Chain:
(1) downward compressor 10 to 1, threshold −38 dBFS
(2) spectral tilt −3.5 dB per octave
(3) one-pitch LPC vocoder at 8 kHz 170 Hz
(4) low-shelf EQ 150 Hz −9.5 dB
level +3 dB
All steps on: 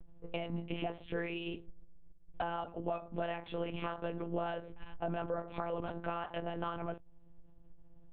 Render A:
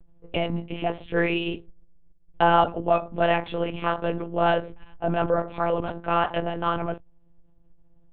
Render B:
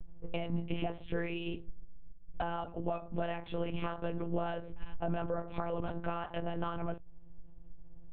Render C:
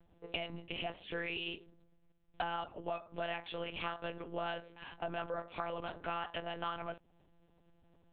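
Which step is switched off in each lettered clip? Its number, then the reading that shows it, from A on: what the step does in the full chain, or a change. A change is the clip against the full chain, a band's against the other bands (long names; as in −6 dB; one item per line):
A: 1, average gain reduction 11.0 dB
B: 4, 125 Hz band +4.0 dB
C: 2, 4 kHz band +9.0 dB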